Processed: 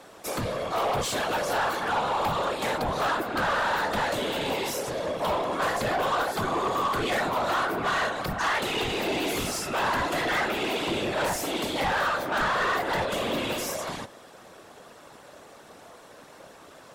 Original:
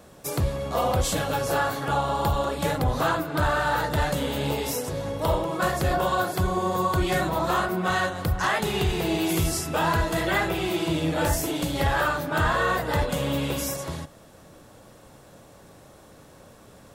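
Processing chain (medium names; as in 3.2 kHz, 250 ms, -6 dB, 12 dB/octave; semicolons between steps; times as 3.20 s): whisper effect; overdrive pedal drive 21 dB, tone 4 kHz, clips at -8.5 dBFS; trim -9 dB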